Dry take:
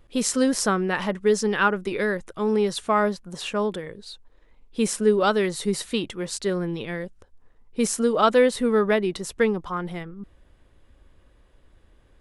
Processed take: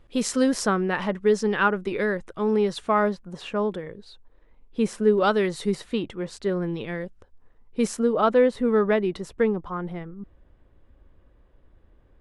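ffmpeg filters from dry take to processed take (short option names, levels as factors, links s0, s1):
-af "asetnsamples=n=441:p=0,asendcmd='0.65 lowpass f 3000;3.15 lowpass f 1700;5.18 lowpass f 3800;5.75 lowpass f 1600;6.62 lowpass f 3100;7.97 lowpass f 1200;8.68 lowpass f 2000;9.29 lowpass f 1100',lowpass=f=4900:p=1"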